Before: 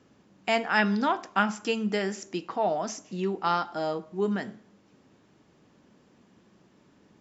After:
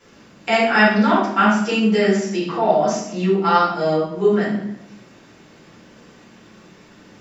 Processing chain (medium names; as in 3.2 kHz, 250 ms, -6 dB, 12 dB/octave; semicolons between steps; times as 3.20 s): reverberation RT60 0.75 s, pre-delay 4 ms, DRR -11 dB; tape noise reduction on one side only encoder only; trim -3.5 dB